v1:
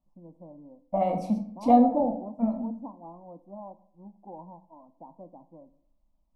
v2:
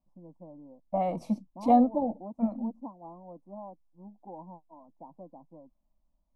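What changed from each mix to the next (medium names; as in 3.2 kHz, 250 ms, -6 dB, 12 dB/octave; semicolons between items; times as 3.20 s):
reverb: off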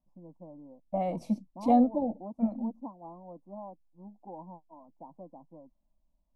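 second voice: add peaking EQ 1.1 kHz -7.5 dB 1 oct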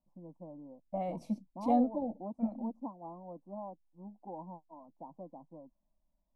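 second voice -5.5 dB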